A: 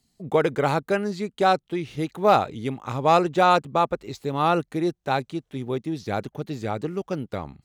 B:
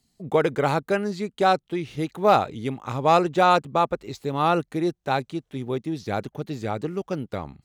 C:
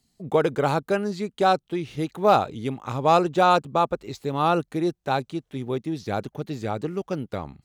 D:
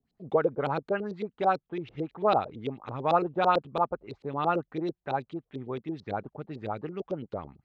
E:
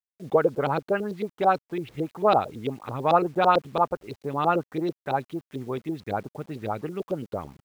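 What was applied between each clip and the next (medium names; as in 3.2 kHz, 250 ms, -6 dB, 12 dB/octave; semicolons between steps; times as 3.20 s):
no audible change
dynamic bell 2 kHz, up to -6 dB, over -44 dBFS, Q 3.2
LFO low-pass saw up 9 Hz 380–4200 Hz; trim -8.5 dB
word length cut 10-bit, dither none; trim +4 dB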